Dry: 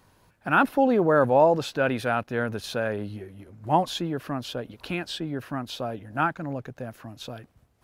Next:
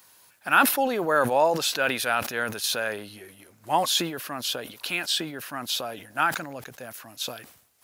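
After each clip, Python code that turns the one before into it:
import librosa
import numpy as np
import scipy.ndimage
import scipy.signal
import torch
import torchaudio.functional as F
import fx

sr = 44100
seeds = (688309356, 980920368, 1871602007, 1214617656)

y = fx.tilt_eq(x, sr, slope=4.5)
y = fx.sustainer(y, sr, db_per_s=83.0)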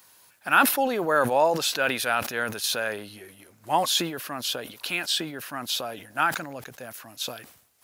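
y = x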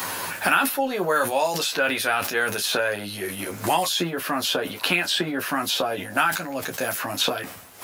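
y = fx.room_early_taps(x, sr, ms=(11, 30), db=(-3.0, -10.5))
y = fx.band_squash(y, sr, depth_pct=100)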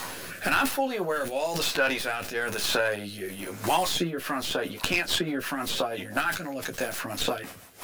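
y = fx.tracing_dist(x, sr, depth_ms=0.1)
y = fx.rotary_switch(y, sr, hz=1.0, then_hz=6.0, switch_at_s=3.93)
y = F.gain(torch.from_numpy(y), -1.5).numpy()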